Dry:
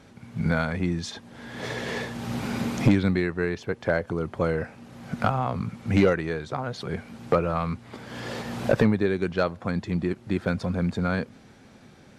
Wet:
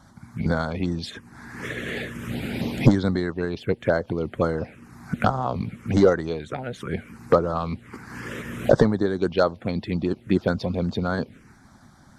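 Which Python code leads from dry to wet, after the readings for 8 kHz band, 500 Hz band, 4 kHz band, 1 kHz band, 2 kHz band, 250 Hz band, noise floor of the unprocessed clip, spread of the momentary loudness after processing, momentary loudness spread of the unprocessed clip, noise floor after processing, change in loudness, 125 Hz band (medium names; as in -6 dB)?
no reading, +3.5 dB, +1.0 dB, +1.5 dB, -1.0 dB, +1.5 dB, -52 dBFS, 15 LU, 14 LU, -52 dBFS, +2.0 dB, +1.0 dB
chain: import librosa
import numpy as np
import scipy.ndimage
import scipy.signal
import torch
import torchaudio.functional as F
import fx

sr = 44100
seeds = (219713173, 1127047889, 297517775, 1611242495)

y = fx.env_phaser(x, sr, low_hz=420.0, high_hz=2500.0, full_db=-20.5)
y = fx.hpss(y, sr, part='harmonic', gain_db=-9)
y = y * librosa.db_to_amplitude(7.0)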